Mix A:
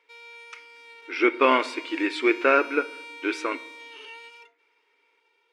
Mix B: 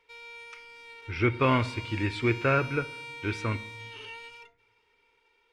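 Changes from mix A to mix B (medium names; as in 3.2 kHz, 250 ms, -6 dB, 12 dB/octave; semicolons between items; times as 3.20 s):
speech -6.0 dB; master: remove brick-wall FIR high-pass 260 Hz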